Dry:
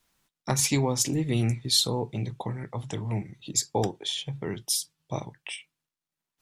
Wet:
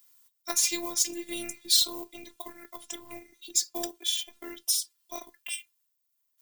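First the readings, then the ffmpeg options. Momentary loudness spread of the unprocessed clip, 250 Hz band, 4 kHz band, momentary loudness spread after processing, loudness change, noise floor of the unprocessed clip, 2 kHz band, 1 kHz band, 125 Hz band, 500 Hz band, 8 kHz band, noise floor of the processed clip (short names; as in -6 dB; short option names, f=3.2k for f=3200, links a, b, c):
13 LU, -10.5 dB, +0.5 dB, 20 LU, +0.5 dB, under -85 dBFS, -2.0 dB, -8.0 dB, under -30 dB, -9.5 dB, +1.0 dB, -77 dBFS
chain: -filter_complex "[0:a]acrossover=split=530|6300[a][b][c];[b]acrusher=bits=5:mode=log:mix=0:aa=0.000001[d];[c]acompressor=threshold=-38dB:ratio=16[e];[a][d][e]amix=inputs=3:normalize=0,aemphasis=mode=production:type=riaa,afftfilt=real='hypot(re,im)*cos(PI*b)':imag='0':win_size=512:overlap=0.75,volume=-2dB"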